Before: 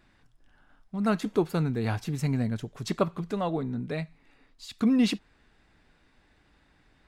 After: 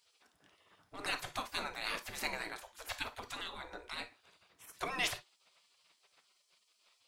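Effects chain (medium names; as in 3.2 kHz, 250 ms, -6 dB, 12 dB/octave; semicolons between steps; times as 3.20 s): spectral gate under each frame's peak -25 dB weak; gated-style reverb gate 80 ms flat, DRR 10 dB; trim +6 dB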